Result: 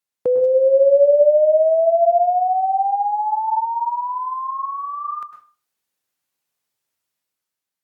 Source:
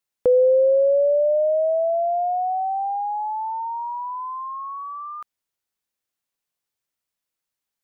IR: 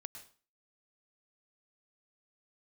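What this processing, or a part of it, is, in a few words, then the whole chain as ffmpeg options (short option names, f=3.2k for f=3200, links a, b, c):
far-field microphone of a smart speaker: -filter_complex "[1:a]atrim=start_sample=2205[a];[0:a][a]afir=irnorm=-1:irlink=0,highpass=88,dynaudnorm=f=130:g=11:m=6.5dB,volume=3.5dB" -ar 48000 -c:a libopus -b:a 48k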